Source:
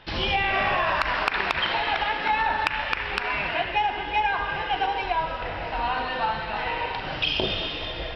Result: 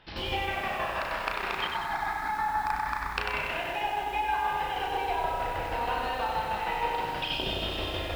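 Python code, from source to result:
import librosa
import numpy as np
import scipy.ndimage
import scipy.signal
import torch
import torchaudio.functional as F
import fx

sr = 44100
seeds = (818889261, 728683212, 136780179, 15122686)

y = fx.doubler(x, sr, ms=34.0, db=-4)
y = fx.echo_bbd(y, sr, ms=131, stages=1024, feedback_pct=61, wet_db=-3.0)
y = fx.tremolo_shape(y, sr, shape='saw_down', hz=6.3, depth_pct=55)
y = fx.fixed_phaser(y, sr, hz=1200.0, stages=4, at=(1.67, 3.18))
y = fx.rider(y, sr, range_db=10, speed_s=0.5)
y = fx.echo_crushed(y, sr, ms=95, feedback_pct=55, bits=7, wet_db=-4.5)
y = y * librosa.db_to_amplitude(-6.5)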